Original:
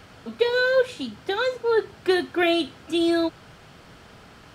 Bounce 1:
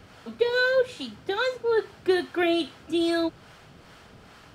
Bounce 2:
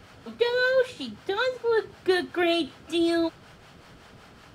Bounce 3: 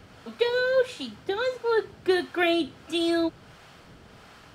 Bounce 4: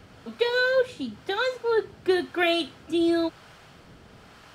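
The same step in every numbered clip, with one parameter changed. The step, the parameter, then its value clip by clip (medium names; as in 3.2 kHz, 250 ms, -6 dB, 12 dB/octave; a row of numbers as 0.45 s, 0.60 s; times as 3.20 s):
harmonic tremolo, rate: 2.4 Hz, 5.3 Hz, 1.5 Hz, 1 Hz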